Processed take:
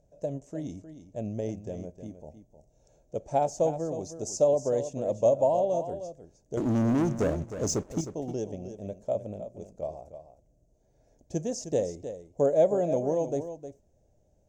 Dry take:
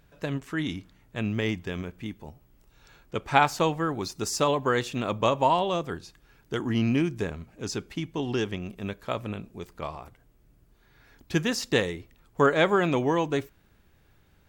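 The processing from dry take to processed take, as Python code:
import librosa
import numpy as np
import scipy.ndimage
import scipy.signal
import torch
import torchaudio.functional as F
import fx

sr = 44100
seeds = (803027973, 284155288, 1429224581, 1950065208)

y = fx.curve_eq(x, sr, hz=(400.0, 610.0, 1200.0, 4200.0, 6400.0, 13000.0), db=(0, 13, -22, -16, 6, -19))
y = fx.leveller(y, sr, passes=3, at=(6.57, 8.01))
y = y + 10.0 ** (-11.0 / 20.0) * np.pad(y, (int(310 * sr / 1000.0), 0))[:len(y)]
y = y * librosa.db_to_amplitude(-6.0)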